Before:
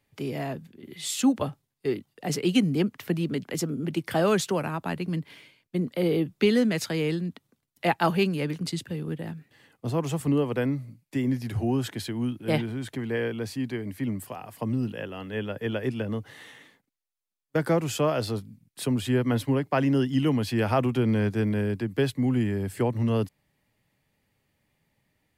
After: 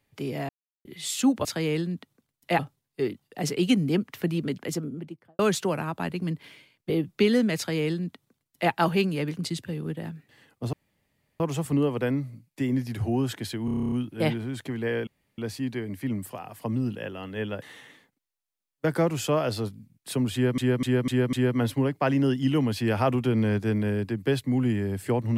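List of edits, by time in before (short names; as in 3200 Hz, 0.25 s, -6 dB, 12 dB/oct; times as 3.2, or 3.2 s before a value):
0.49–0.85 mute
3.44–4.25 studio fade out
5.76–6.12 cut
6.79–7.93 copy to 1.45
9.95 insert room tone 0.67 s
12.2 stutter 0.03 s, 10 plays
13.35 insert room tone 0.31 s
15.59–16.33 cut
19.04–19.29 loop, 5 plays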